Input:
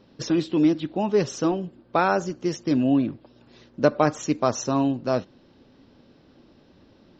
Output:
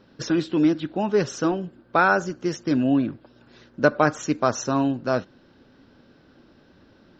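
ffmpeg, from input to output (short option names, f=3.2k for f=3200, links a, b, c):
-af "equalizer=f=1.5k:t=o:w=0.43:g=8.5"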